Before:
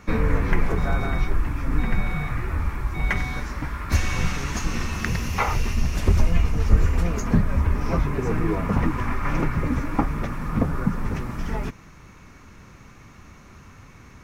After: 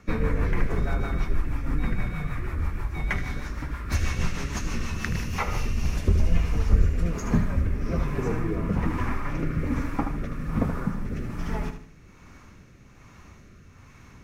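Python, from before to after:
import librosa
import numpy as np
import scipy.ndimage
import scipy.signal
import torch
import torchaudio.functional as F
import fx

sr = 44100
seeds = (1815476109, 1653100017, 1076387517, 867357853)

y = fx.echo_feedback(x, sr, ms=76, feedback_pct=45, wet_db=-8)
y = fx.rotary_switch(y, sr, hz=6.3, then_hz=1.2, switch_at_s=5.17)
y = y * 10.0 ** (-2.5 / 20.0)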